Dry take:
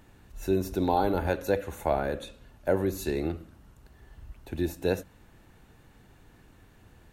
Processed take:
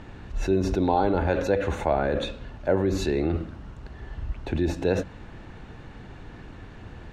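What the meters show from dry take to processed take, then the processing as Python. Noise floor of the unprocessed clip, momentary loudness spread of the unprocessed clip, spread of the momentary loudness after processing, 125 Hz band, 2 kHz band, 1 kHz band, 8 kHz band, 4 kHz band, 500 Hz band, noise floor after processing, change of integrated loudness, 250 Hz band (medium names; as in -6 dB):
-58 dBFS, 13 LU, 21 LU, +6.0 dB, +4.0 dB, +3.0 dB, +1.0 dB, +5.5 dB, +3.5 dB, -44 dBFS, +3.5 dB, +4.5 dB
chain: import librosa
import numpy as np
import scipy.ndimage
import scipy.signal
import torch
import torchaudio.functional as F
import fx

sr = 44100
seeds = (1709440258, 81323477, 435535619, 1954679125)

p1 = fx.over_compress(x, sr, threshold_db=-37.0, ratio=-1.0)
p2 = x + (p1 * librosa.db_to_amplitude(2.0))
p3 = fx.air_absorb(p2, sr, metres=140.0)
y = p3 * librosa.db_to_amplitude(2.0)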